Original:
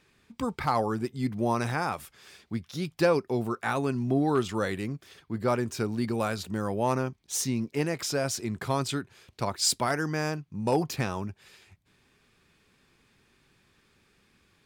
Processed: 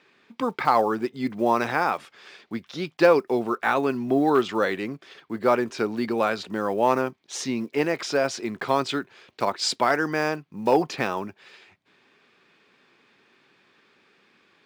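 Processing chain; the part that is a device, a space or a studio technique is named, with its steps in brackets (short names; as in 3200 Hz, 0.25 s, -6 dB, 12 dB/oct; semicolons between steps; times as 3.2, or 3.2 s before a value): early digital voice recorder (BPF 290–3900 Hz; block floating point 7-bit); gain +7 dB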